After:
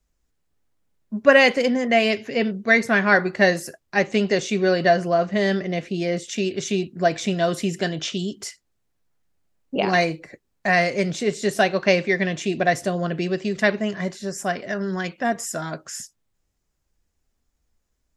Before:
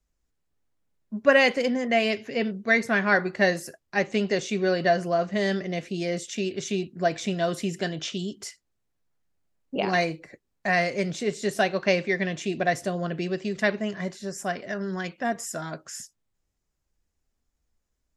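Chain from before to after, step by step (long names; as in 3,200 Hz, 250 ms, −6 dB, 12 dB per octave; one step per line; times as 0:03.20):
0:04.93–0:06.25: high-shelf EQ 9,900 Hz → 5,600 Hz −9.5 dB
level +4.5 dB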